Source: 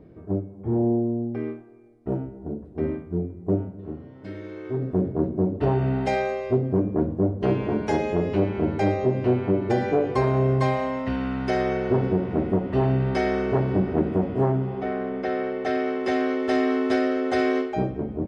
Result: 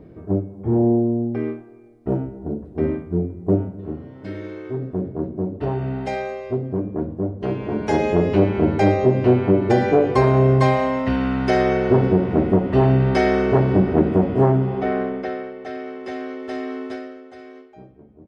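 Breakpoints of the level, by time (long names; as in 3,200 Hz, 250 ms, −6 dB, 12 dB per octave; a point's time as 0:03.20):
0:04.45 +5 dB
0:04.93 −2 dB
0:07.59 −2 dB
0:08.05 +6 dB
0:15.00 +6 dB
0:15.55 −6.5 dB
0:16.84 −6.5 dB
0:17.33 −19 dB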